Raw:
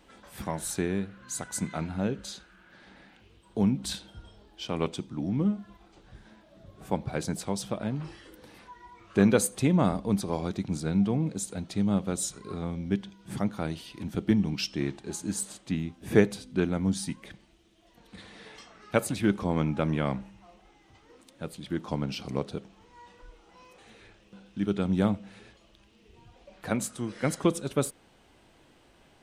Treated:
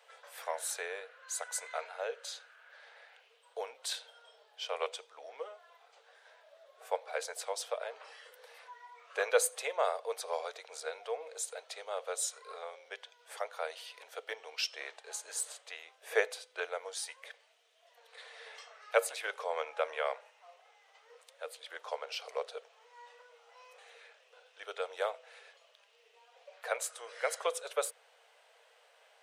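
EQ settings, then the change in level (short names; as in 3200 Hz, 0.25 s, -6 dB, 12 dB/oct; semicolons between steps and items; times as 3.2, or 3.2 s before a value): rippled Chebyshev high-pass 450 Hz, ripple 3 dB; 0.0 dB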